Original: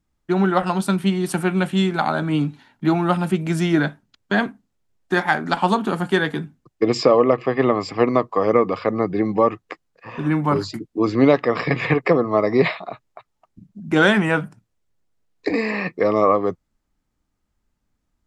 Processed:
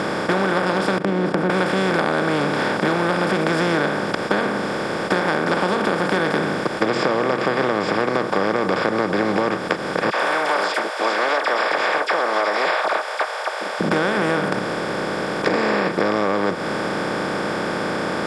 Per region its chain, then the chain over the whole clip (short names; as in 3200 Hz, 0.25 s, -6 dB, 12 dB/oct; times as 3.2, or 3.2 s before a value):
0.98–1.5 Butterworth band-pass 210 Hz, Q 1.2 + gate -32 dBFS, range -13 dB
10.1–13.81 rippled Chebyshev high-pass 610 Hz, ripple 3 dB + high shelf 8600 Hz +6 dB + dispersion lows, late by 42 ms, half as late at 2100 Hz
whole clip: per-bin compression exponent 0.2; LPF 9800 Hz 12 dB/oct; compressor, threshold -12 dBFS; gain -4 dB